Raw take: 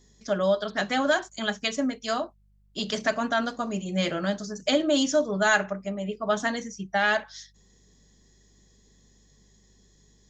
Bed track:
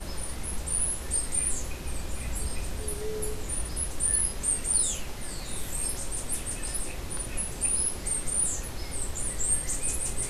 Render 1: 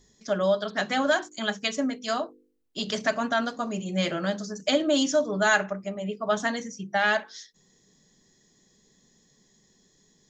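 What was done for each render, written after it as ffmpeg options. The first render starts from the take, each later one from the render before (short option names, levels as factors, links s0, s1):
-af "bandreject=f=50:t=h:w=4,bandreject=f=100:t=h:w=4,bandreject=f=150:t=h:w=4,bandreject=f=200:t=h:w=4,bandreject=f=250:t=h:w=4,bandreject=f=300:t=h:w=4,bandreject=f=350:t=h:w=4,bandreject=f=400:t=h:w=4,bandreject=f=450:t=h:w=4,bandreject=f=500:t=h:w=4"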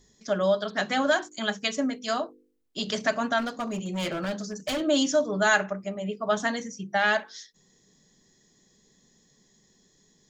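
-filter_complex "[0:a]asplit=3[s0][s1][s2];[s0]afade=t=out:st=3.38:d=0.02[s3];[s1]volume=20,asoftclip=hard,volume=0.0501,afade=t=in:st=3.38:d=0.02,afade=t=out:st=4.8:d=0.02[s4];[s2]afade=t=in:st=4.8:d=0.02[s5];[s3][s4][s5]amix=inputs=3:normalize=0"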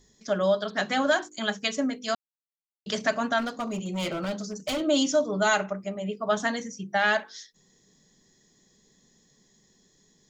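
-filter_complex "[0:a]asettb=1/sr,asplit=3[s0][s1][s2];[s0]atrim=end=3.614[s3];[s1]atrim=start=3.61:end=5.74,asetpts=PTS-STARTPTS,afade=t=in:d=0.004:c=qsin,afade=t=out:st=2.126:d=0.004:c=qsin,bandreject=f=1700:w=6.4[s4];[s2]atrim=start=5.736[s5];[s3][s4]acrossfade=d=0.004:c1=hsin:c2=qsin[s6];[s6][s5]acrossfade=d=0.004:c1=qsin:c2=hsin,asplit=3[s7][s8][s9];[s7]atrim=end=2.15,asetpts=PTS-STARTPTS,afade=t=out:st=2.146:d=0.004:c=hsin[s10];[s8]atrim=start=2.15:end=2.86,asetpts=PTS-STARTPTS,volume=0[s11];[s9]atrim=start=2.86,asetpts=PTS-STARTPTS,afade=t=in:d=0.004:c=hsin[s12];[s10][s11][s12]concat=n=3:v=0:a=1"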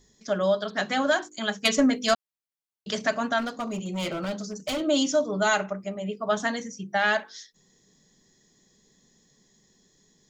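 -filter_complex "[0:a]asettb=1/sr,asplit=3[s0][s1][s2];[s0]atrim=end=1.654[s3];[s1]atrim=start=1.65:end=2.14,asetpts=PTS-STARTPTS,afade=t=in:d=0.004:c=qsin,afade=t=out:st=0.486:d=0.004:c=qsin,aeval=exprs='0.211*sin(PI/2*1.58*val(0)/0.211)':c=same[s4];[s2]atrim=start=2.136[s5];[s3][s4]acrossfade=d=0.004:c1=hsin:c2=qsin[s6];[s6][s5]acrossfade=d=0.004:c1=qsin:c2=hsin"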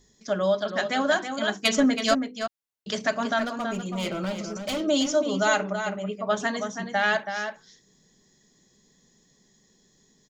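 -filter_complex "[0:a]asplit=2[s0][s1];[s1]adelay=326.5,volume=0.447,highshelf=f=4000:g=-7.35[s2];[s0][s2]amix=inputs=2:normalize=0"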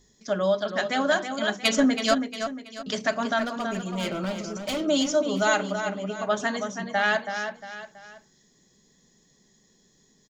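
-af "aecho=1:1:681:0.158"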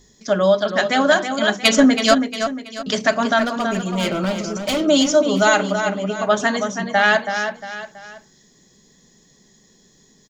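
-af "volume=2.51,alimiter=limit=0.708:level=0:latency=1"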